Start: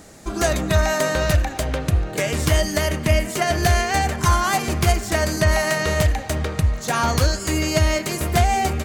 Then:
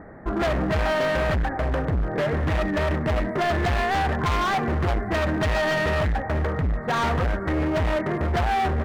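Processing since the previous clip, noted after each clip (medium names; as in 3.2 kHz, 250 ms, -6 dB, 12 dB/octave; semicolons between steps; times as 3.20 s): elliptic low-pass 1.9 kHz, stop band 40 dB; hard clipper -24 dBFS, distortion -6 dB; trim +3.5 dB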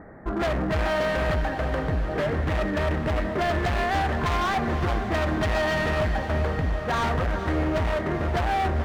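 echo that smears into a reverb 464 ms, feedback 66%, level -10.5 dB; trim -2 dB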